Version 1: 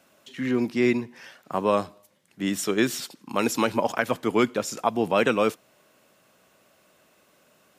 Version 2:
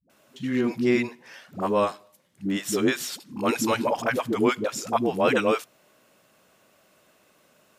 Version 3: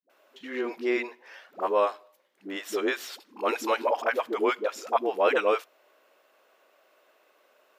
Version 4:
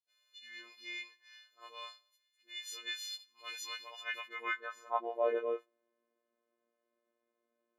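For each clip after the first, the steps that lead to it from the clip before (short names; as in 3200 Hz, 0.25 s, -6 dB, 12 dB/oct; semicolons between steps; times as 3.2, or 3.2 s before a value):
dispersion highs, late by 98 ms, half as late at 330 Hz
HPF 380 Hz 24 dB/oct; bell 8900 Hz -12.5 dB 1.7 oct
frequency quantiser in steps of 3 st; robotiser 117 Hz; band-pass sweep 4300 Hz -> 220 Hz, 3.85–5.9; gain -2.5 dB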